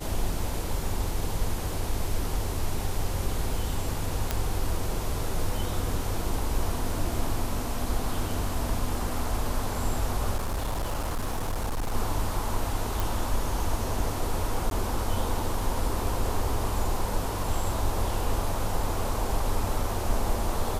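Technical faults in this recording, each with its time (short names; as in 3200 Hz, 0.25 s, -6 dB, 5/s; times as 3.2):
4.31 pop -10 dBFS
10.37–11.95 clipped -25 dBFS
13 pop
14.7–14.71 gap 12 ms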